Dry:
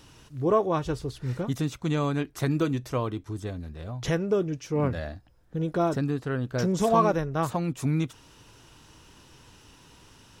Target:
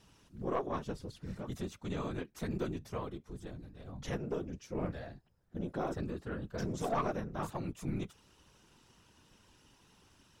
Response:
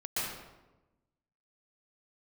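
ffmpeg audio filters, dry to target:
-af "afftfilt=real='hypot(re,im)*cos(2*PI*random(0))':imag='hypot(re,im)*sin(2*PI*random(1))':win_size=512:overlap=0.75,aeval=exprs='(tanh(11.2*val(0)+0.4)-tanh(0.4))/11.2':channel_layout=same,volume=-3.5dB"

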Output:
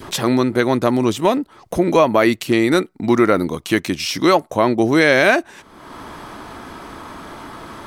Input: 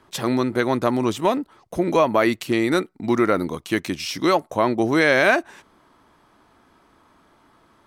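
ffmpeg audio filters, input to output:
ffmpeg -i in.wav -af "acompressor=mode=upward:threshold=-24dB:ratio=2.5,adynamicequalizer=threshold=0.0224:dfrequency=1100:dqfactor=0.87:tfrequency=1100:tqfactor=0.87:attack=5:release=100:ratio=0.375:range=2:mode=cutabove:tftype=bell,volume=5dB" out.wav

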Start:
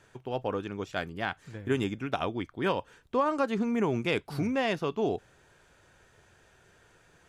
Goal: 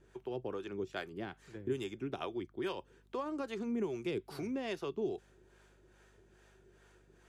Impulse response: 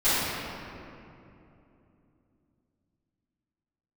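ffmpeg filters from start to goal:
-filter_complex "[0:a]highpass=110,equalizer=frequency=370:width_type=o:width=0.35:gain=13,acrossover=split=150|3000[link_01][link_02][link_03];[link_02]acompressor=threshold=-29dB:ratio=3[link_04];[link_01][link_04][link_03]amix=inputs=3:normalize=0,acrossover=split=480[link_05][link_06];[link_05]aeval=exprs='val(0)*(1-0.7/2+0.7/2*cos(2*PI*2.4*n/s))':channel_layout=same[link_07];[link_06]aeval=exprs='val(0)*(1-0.7/2-0.7/2*cos(2*PI*2.4*n/s))':channel_layout=same[link_08];[link_07][link_08]amix=inputs=2:normalize=0,aeval=exprs='val(0)+0.000794*(sin(2*PI*50*n/s)+sin(2*PI*2*50*n/s)/2+sin(2*PI*3*50*n/s)/3+sin(2*PI*4*50*n/s)/4+sin(2*PI*5*50*n/s)/5)':channel_layout=same,volume=-4dB"

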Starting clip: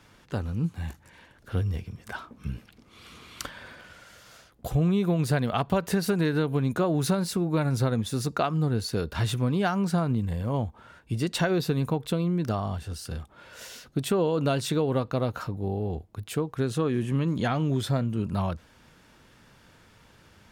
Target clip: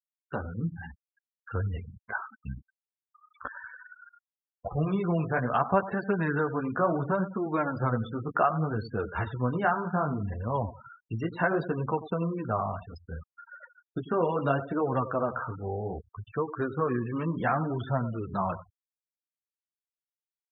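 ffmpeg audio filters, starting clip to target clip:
ffmpeg -i in.wav -filter_complex "[0:a]highshelf=frequency=2100:gain=11.5,deesser=0.45,equalizer=frequency=1200:width_type=o:width=2.4:gain=9,asplit=2[link_01][link_02];[link_02]aecho=0:1:94|188|282|376:0.211|0.0951|0.0428|0.0193[link_03];[link_01][link_03]amix=inputs=2:normalize=0,flanger=delay=8.6:depth=9.9:regen=-10:speed=0.67:shape=sinusoidal,acrossover=split=430|1800[link_04][link_05][link_06];[link_06]acompressor=threshold=-44dB:ratio=12[link_07];[link_04][link_05][link_07]amix=inputs=3:normalize=0,aeval=exprs='val(0)*gte(abs(val(0)),0.0075)':channel_layout=same,afftfilt=real='re*gte(hypot(re,im),0.0282)':imag='im*gte(hypot(re,im),0.0282)':win_size=1024:overlap=0.75,volume=-3dB" out.wav

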